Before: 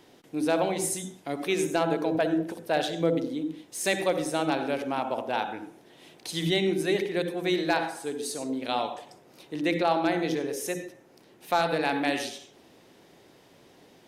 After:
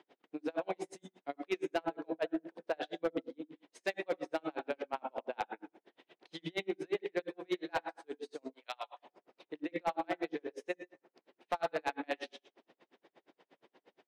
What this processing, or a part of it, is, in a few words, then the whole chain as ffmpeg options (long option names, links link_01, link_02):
helicopter radio: -filter_complex "[0:a]highpass=330,lowpass=2900,aeval=exprs='val(0)*pow(10,-40*(0.5-0.5*cos(2*PI*8.5*n/s))/20)':channel_layout=same,asoftclip=type=hard:threshold=-24dB,asplit=3[link_01][link_02][link_03];[link_01]afade=type=out:start_time=8.52:duration=0.02[link_04];[link_02]highpass=990,afade=type=in:start_time=8.52:duration=0.02,afade=type=out:start_time=9.01:duration=0.02[link_05];[link_03]afade=type=in:start_time=9.01:duration=0.02[link_06];[link_04][link_05][link_06]amix=inputs=3:normalize=0,volume=-1.5dB"